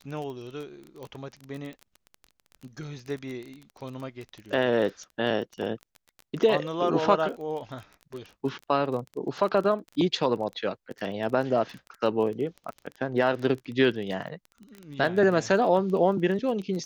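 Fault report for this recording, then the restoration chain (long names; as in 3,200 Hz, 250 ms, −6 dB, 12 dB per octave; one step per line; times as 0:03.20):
surface crackle 21 per second −33 dBFS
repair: click removal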